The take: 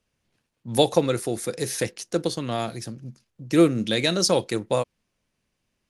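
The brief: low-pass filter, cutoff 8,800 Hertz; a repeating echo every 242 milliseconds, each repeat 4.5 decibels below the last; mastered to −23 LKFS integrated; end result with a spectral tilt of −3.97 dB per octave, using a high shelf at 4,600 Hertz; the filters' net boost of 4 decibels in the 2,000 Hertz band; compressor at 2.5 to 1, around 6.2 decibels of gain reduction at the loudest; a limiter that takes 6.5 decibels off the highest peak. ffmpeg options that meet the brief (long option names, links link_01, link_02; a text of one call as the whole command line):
ffmpeg -i in.wav -af "lowpass=8800,equalizer=frequency=2000:width_type=o:gain=4,highshelf=frequency=4600:gain=4.5,acompressor=threshold=-21dB:ratio=2.5,alimiter=limit=-15dB:level=0:latency=1,aecho=1:1:242|484|726|968|1210|1452|1694|1936|2178:0.596|0.357|0.214|0.129|0.0772|0.0463|0.0278|0.0167|0.01,volume=4.5dB" out.wav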